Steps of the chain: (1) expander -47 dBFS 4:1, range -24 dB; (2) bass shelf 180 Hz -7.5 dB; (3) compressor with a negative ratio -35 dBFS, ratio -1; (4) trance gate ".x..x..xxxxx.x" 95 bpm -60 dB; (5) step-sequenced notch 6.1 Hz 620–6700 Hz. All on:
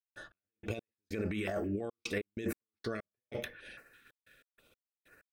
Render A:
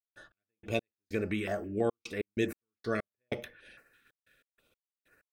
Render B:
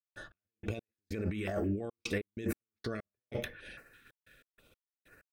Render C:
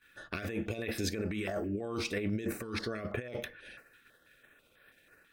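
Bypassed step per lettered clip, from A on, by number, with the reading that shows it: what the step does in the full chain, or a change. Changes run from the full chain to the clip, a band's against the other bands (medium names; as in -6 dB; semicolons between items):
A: 3, crest factor change +3.5 dB; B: 2, 125 Hz band +3.5 dB; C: 4, crest factor change -2.0 dB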